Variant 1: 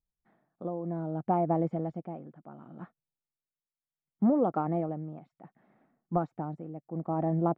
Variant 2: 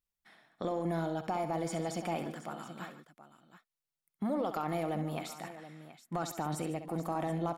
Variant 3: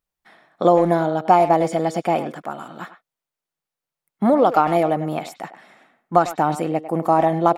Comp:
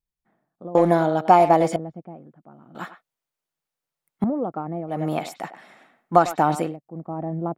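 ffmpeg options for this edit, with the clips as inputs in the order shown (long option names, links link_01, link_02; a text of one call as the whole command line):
ffmpeg -i take0.wav -i take1.wav -i take2.wav -filter_complex "[2:a]asplit=3[link_01][link_02][link_03];[0:a]asplit=4[link_04][link_05][link_06][link_07];[link_04]atrim=end=0.752[link_08];[link_01]atrim=start=0.748:end=1.762[link_09];[link_05]atrim=start=1.758:end=2.752[link_10];[link_02]atrim=start=2.748:end=4.242[link_11];[link_06]atrim=start=4.238:end=5.03[link_12];[link_03]atrim=start=4.87:end=6.77[link_13];[link_07]atrim=start=6.61[link_14];[link_08][link_09]acrossfade=duration=0.004:curve1=hsin:curve2=hsin[link_15];[link_15][link_10]acrossfade=duration=0.004:curve1=hsin:curve2=hsin[link_16];[link_16][link_11]acrossfade=duration=0.004:curve1=hsin:curve2=hsin[link_17];[link_17][link_12]acrossfade=duration=0.004:curve1=hsin:curve2=hsin[link_18];[link_18][link_13]acrossfade=duration=0.16:curve1=tri:curve2=tri[link_19];[link_19][link_14]acrossfade=duration=0.16:curve1=tri:curve2=tri" out.wav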